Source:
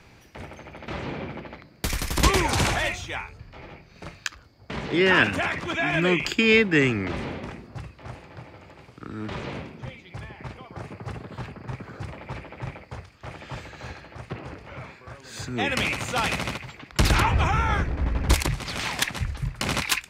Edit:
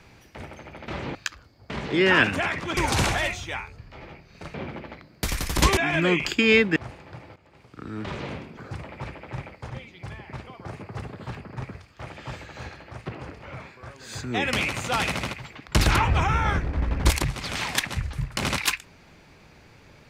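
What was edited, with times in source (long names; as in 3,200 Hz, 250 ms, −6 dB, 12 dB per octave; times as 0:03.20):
0:01.15–0:02.38: swap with 0:04.15–0:05.77
0:06.76–0:08.00: remove
0:08.60–0:09.11: fade in, from −15 dB
0:11.86–0:12.99: move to 0:09.81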